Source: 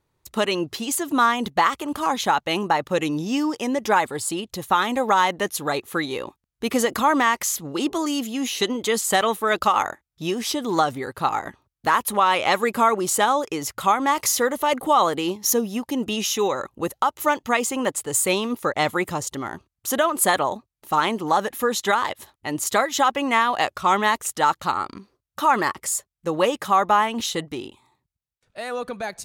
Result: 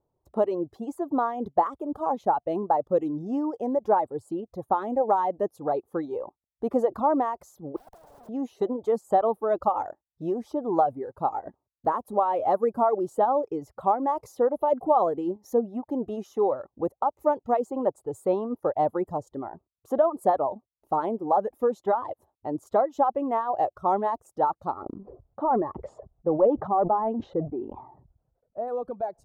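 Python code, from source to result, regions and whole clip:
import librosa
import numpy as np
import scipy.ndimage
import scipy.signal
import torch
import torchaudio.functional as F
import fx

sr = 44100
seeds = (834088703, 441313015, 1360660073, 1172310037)

y = fx.chain(x, sr, fx.curve_eq(hz=(320.0, 570.0, 1600.0, 6000.0, 14000.0), db=(0, -3, -10, 13, -1)),
    fx.schmitt(flips_db=-29.0),
    fx.spectral_comp(ratio=10.0), at=(7.76, 8.29))
y = fx.chain(y, sr, fx.leveller(passes=1),
    fx.spacing_loss(db_at_10k=45),
    fx.sustainer(db_per_s=46.0), at=(24.82, 28.68))
y = fx.dereverb_blind(y, sr, rt60_s=0.92)
y = fx.curve_eq(y, sr, hz=(190.0, 710.0, 2300.0), db=(0, 8, -25))
y = y * librosa.db_to_amplitude(-5.5)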